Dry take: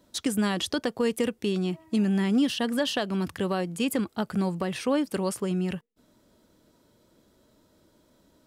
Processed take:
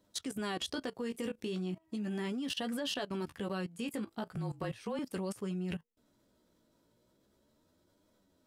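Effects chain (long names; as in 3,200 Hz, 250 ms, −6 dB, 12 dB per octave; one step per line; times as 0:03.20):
flanger 0.37 Hz, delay 9.5 ms, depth 9 ms, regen +25%
0:04.36–0:04.99: frequency shifter −33 Hz
output level in coarse steps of 18 dB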